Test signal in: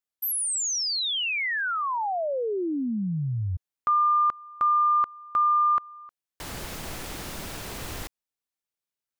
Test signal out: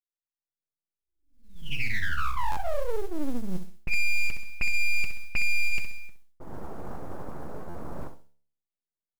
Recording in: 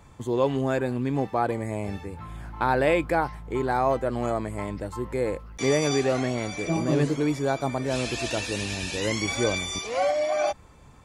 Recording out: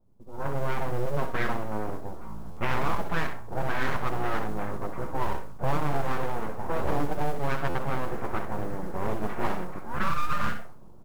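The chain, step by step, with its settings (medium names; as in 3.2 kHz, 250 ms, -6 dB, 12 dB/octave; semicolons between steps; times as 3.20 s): flange 0.2 Hz, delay 1.5 ms, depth 5 ms, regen -73%; steep low-pass 1.5 kHz 48 dB/octave; feedback delay 65 ms, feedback 29%, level -9 dB; level rider gain up to 16 dB; comb of notches 180 Hz; full-wave rectifier; feedback comb 72 Hz, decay 0.54 s, harmonics all, mix 50%; level-controlled noise filter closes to 470 Hz, open at -12 dBFS; modulation noise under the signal 31 dB; compression 4:1, threshold -15 dBFS; buffer glitch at 2.51/7.69 s, samples 512, times 4; loudspeaker Doppler distortion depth 0.38 ms; trim -3 dB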